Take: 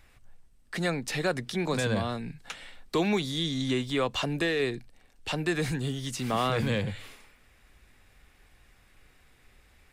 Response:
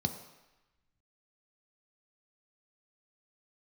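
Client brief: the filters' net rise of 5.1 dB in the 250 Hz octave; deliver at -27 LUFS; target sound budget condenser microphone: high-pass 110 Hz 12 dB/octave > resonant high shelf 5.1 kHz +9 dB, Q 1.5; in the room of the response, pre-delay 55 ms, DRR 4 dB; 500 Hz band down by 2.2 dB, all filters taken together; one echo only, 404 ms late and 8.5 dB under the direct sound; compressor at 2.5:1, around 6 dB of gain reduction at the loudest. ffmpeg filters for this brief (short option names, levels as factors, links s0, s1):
-filter_complex "[0:a]equalizer=f=250:t=o:g=8.5,equalizer=f=500:t=o:g=-6,acompressor=threshold=0.0398:ratio=2.5,aecho=1:1:404:0.376,asplit=2[s0][s1];[1:a]atrim=start_sample=2205,adelay=55[s2];[s1][s2]afir=irnorm=-1:irlink=0,volume=0.398[s3];[s0][s3]amix=inputs=2:normalize=0,highpass=110,highshelf=f=5100:t=q:w=1.5:g=9,volume=0.891"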